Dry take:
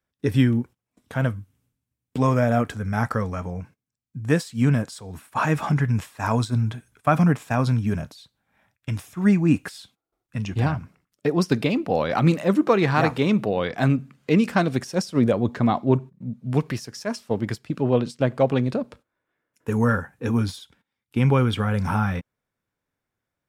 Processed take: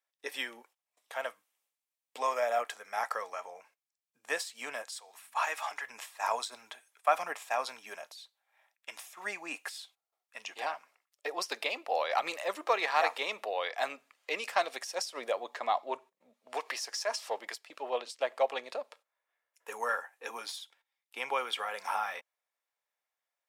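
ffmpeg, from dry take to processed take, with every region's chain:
-filter_complex "[0:a]asettb=1/sr,asplit=3[a][b][c];[a]atrim=end=4.824[d];[b]atrim=start=4.82:end=5.86,asetpts=PTS-STARTPTS,afade=t=in:d=0.004:c=qsin,afade=t=out:st=1.036:d=0.004:c=qsin,highpass=f=810:p=1,aeval=exprs='val(0)+0.01*(sin(2*PI*50*n/s)+sin(2*PI*2*50*n/s)/2+sin(2*PI*3*50*n/s)/3+sin(2*PI*4*50*n/s)/4+sin(2*PI*5*50*n/s)/5)':c=same[e];[c]atrim=start=5.856[f];[d][e]acrossfade=d=0.004:c1=hsin:c2=qsin[g];[g][f]acrossfade=d=0.004:c1=qsin:c2=hsin,asettb=1/sr,asplit=3[h][i][j];[h]atrim=end=16.474[k];[i]atrim=start=16.47:end=17.39,asetpts=PTS-STARTPTS,afade=t=in:d=0.004:c=qsin,afade=t=out:st=0.916:d=0.004:c=qsin,bass=f=250:g=3,treble=f=4k:g=10,acompressor=mode=upward:threshold=-23dB:ratio=2.5:attack=3.2:release=140:knee=2.83:detection=peak,asplit=2[l][m];[m]highpass=f=720:p=1,volume=12dB,asoftclip=type=tanh:threshold=-7dB[n];[l][n]amix=inputs=2:normalize=0,lowpass=f=1.4k:p=1,volume=-6dB[o];[j]atrim=start=17.386[p];[k][o]acrossfade=d=0.004:c1=hsin:c2=qsin[q];[q][p]acrossfade=d=0.004:c1=qsin:c2=hsin,highpass=f=640:w=0.5412,highpass=f=640:w=1.3066,equalizer=f=1.2k:t=o:w=0.77:g=-3,bandreject=f=1.5k:w=10,volume=-2.5dB"

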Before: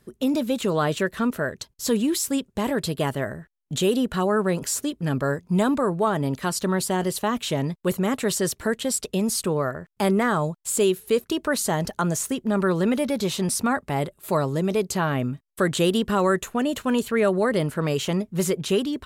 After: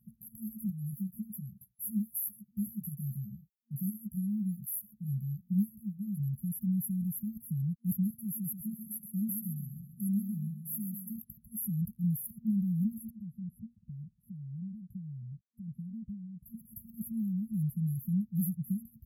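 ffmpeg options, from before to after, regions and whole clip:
-filter_complex "[0:a]asettb=1/sr,asplit=3[a][b][c];[a]atrim=end=0.704[d];[b]atrim=start=0.7:end=6.2,asetpts=PTS-STARTPTS,afade=t=in:d=0.004:c=qsin,afade=t=out:st=5.496:d=0.004:c=qsin,highpass=f=220:p=1,asplit=2[e][f];[f]adelay=15,volume=-3dB[g];[e][g]amix=inputs=2:normalize=0,atrim=end_sample=242550[h];[c]atrim=start=6.196[i];[d][h]acrossfade=d=0.004:c1=hsin:c2=qsin[j];[j][i]acrossfade=d=0.004:c1=qsin:c2=hsin,asettb=1/sr,asplit=3[k][l][m];[k]atrim=end=8.104[n];[l]atrim=start=8.1:end=11.16,asetpts=PTS-STARTPTS,afade=t=in:d=0.004:c=qsin,afade=t=out:st=3.056:d=0.004:c=qsin,highpass=f=210:p=1,aecho=1:1:134|268|402|536|670:0.355|0.156|0.0687|0.0302|0.0133,atrim=end_sample=134946[o];[m]atrim=start=11.156[p];[n][o]acrossfade=d=0.004:c1=hsin:c2=qsin[q];[q][p]acrossfade=d=0.004:c1=qsin:c2=hsin,asettb=1/sr,asplit=3[r][s][t];[r]atrim=end=13.104[u];[s]atrim=start=13.1:end=16.46,asetpts=PTS-STARTPTS,afade=t=in:d=0.004:c=qsin,afade=t=out:st=3.356:d=0.004:c=qsin,lowpass=3.1k,acompressor=threshold=-38dB:ratio=2:attack=3.2:release=140:knee=1:detection=peak[v];[t]atrim=start=16.456[w];[u][v]acrossfade=d=0.004:c1=hsin:c2=qsin[x];[x][w]acrossfade=d=0.004:c1=qsin:c2=hsin,afftfilt=real='re*(1-between(b*sr/4096,230,11000))':imag='im*(1-between(b*sr/4096,230,11000))':win_size=4096:overlap=0.75,highpass=f=140:p=1,equalizer=f=290:t=o:w=0.75:g=-8"

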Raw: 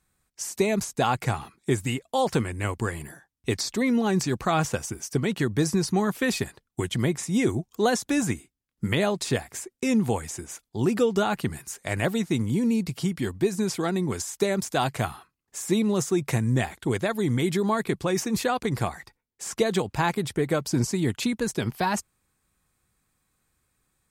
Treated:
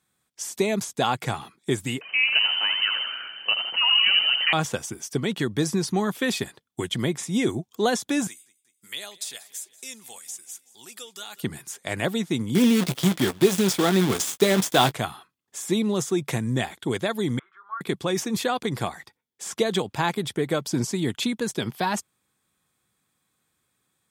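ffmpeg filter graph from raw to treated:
-filter_complex "[0:a]asettb=1/sr,asplit=3[a][b][c];[a]atrim=end=2.014[d];[b]atrim=start=2.01:end=4.53,asetpts=PTS-STARTPTS,afade=t=in:d=0.004:c=qsin,afade=t=out:st=2.516:d=0.004:c=qsin,aeval=exprs='val(0)+0.5*0.0178*sgn(val(0))':c=same,asplit=9[e][f][g][h][i][j][k][l][m];[f]adelay=82,afreqshift=-70,volume=-6dB[n];[g]adelay=164,afreqshift=-140,volume=-10.7dB[o];[h]adelay=246,afreqshift=-210,volume=-15.5dB[p];[i]adelay=328,afreqshift=-280,volume=-20.2dB[q];[j]adelay=410,afreqshift=-350,volume=-24.9dB[r];[k]adelay=492,afreqshift=-420,volume=-29.7dB[s];[l]adelay=574,afreqshift=-490,volume=-34.4dB[t];[m]adelay=656,afreqshift=-560,volume=-39.1dB[u];[e][n][o][p][q][r][s][t][u]amix=inputs=9:normalize=0,atrim=end_sample=111132,lowpass=f=2.6k:t=q:w=0.5098,lowpass=f=2.6k:t=q:w=0.6013,lowpass=f=2.6k:t=q:w=0.9,lowpass=f=2.6k:t=q:w=2.563,afreqshift=-3100[v];[c]atrim=start=4.526[w];[d][v]acrossfade=d=0.004:c1=hsin:c2=qsin[x];[x][w]acrossfade=d=0.004:c1=qsin:c2=hsin,asettb=1/sr,asplit=3[y][z][aa];[y]atrim=end=8.274[ab];[z]atrim=start=8.27:end=11.43,asetpts=PTS-STARTPTS,afade=t=in:d=0.004:c=qsin,afade=t=out:st=3.156:d=0.004:c=qsin,aderivative,aphaser=in_gain=1:out_gain=1:delay=1.7:decay=0.23:speed=1.3:type=triangular,aecho=1:1:188|376|564|752|940:0.1|0.06|0.036|0.0216|0.013,atrim=end_sample=139356[ac];[aa]atrim=start=11.426[ad];[ab][ac]acrossfade=d=0.004:c1=hsin:c2=qsin[ae];[ae][ad]acrossfade=d=0.004:c1=qsin:c2=hsin,asettb=1/sr,asplit=3[af][ag][ah];[af]atrim=end=12.554[ai];[ag]atrim=start=12.55:end=14.92,asetpts=PTS-STARTPTS,afade=t=in:d=0.004:c=qsin,afade=t=out:st=2.366:d=0.004:c=qsin,acrusher=bits=6:dc=4:mix=0:aa=0.000001,acontrast=33,asplit=2[aj][ak];[ak]adelay=16,volume=-12dB[al];[aj][al]amix=inputs=2:normalize=0,atrim=end_sample=104517[am];[ah]atrim=start=14.916[an];[ai][am]acrossfade=d=0.004:c1=hsin:c2=qsin[ao];[ao][an]acrossfade=d=0.004:c1=qsin:c2=hsin,asettb=1/sr,asplit=3[ap][aq][ar];[ap]atrim=end=17.394[as];[aq]atrim=start=17.39:end=17.81,asetpts=PTS-STARTPTS,afade=t=in:d=0.004:c=qsin,afade=t=out:st=0.416:d=0.004:c=qsin,asuperpass=centerf=1300:order=4:qfactor=4.2,asplit=2[at][au];[au]adelay=23,volume=-11dB[av];[at][av]amix=inputs=2:normalize=0,atrim=end_sample=18522[aw];[ar]atrim=start=17.806[ax];[as][aw]acrossfade=d=0.004:c1=hsin:c2=qsin[ay];[ay][ax]acrossfade=d=0.004:c1=qsin:c2=hsin,highpass=130,equalizer=f=3.4k:w=7:g=8.5"

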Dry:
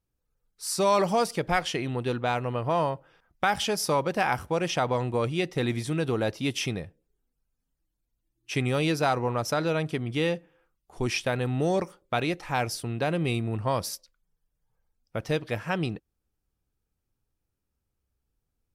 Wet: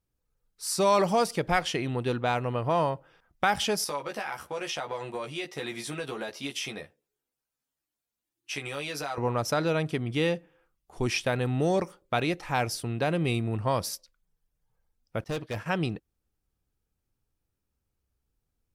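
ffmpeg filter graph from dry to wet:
-filter_complex "[0:a]asettb=1/sr,asplit=3[a][b][c];[a]atrim=end=3.844[d];[b]atrim=start=3.84:end=9.18,asetpts=PTS-STARTPTS,afade=t=in:d=0.004:c=qsin,afade=t=out:st=5.336:d=0.004:c=qsin,highpass=f=710:p=1,acompressor=threshold=-31dB:ratio=5:attack=3.2:release=140:knee=1:detection=peak,asplit=2[e][f];[f]adelay=14,volume=-3dB[g];[e][g]amix=inputs=2:normalize=0,atrim=end_sample=235494[h];[c]atrim=start=9.176[i];[d][h]acrossfade=d=0.004:c1=hsin:c2=qsin[j];[j][i]acrossfade=d=0.004:c1=qsin:c2=hsin,asettb=1/sr,asplit=3[k][l][m];[k]atrim=end=15.244[n];[l]atrim=start=15.24:end=15.66,asetpts=PTS-STARTPTS,afade=t=in:d=0.004:c=qsin,afade=t=out:st=0.416:d=0.004:c=qsin,agate=range=-33dB:threshold=-38dB:ratio=3:release=100:detection=peak,asoftclip=type=hard:threshold=-28dB[o];[m]atrim=start=15.656[p];[n][o]acrossfade=d=0.004:c1=hsin:c2=qsin[q];[q][p]acrossfade=d=0.004:c1=qsin:c2=hsin"

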